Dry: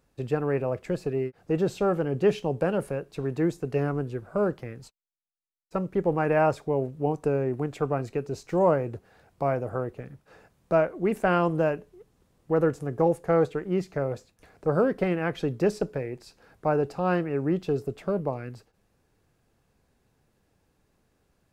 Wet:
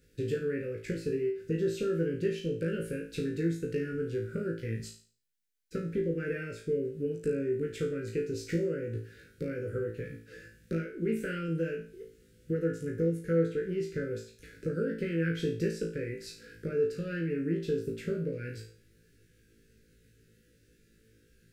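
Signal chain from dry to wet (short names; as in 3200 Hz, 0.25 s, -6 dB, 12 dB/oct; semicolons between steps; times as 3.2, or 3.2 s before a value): compressor 4:1, threshold -34 dBFS, peak gain reduction 15 dB; elliptic band-stop 490–1500 Hz, stop band 40 dB; on a send: flutter echo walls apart 3.1 m, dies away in 0.43 s; on the sum: gain +3 dB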